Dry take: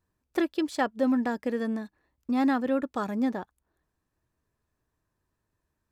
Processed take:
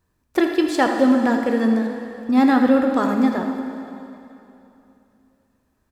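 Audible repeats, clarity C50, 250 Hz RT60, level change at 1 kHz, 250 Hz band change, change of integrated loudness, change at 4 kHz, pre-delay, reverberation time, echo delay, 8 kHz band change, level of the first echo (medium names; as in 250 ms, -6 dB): 1, 4.0 dB, 2.9 s, +10.0 dB, +10.0 dB, +9.5 dB, +10.0 dB, 6 ms, 2.9 s, 80 ms, no reading, -11.5 dB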